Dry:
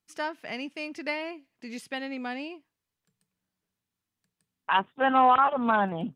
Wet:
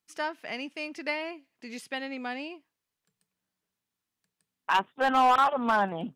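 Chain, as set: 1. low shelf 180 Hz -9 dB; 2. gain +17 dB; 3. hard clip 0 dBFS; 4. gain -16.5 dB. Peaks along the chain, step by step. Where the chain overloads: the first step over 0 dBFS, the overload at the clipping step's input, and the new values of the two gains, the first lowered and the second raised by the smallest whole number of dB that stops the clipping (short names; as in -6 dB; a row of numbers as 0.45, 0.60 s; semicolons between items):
-11.0, +6.0, 0.0, -16.5 dBFS; step 2, 6.0 dB; step 2 +11 dB, step 4 -10.5 dB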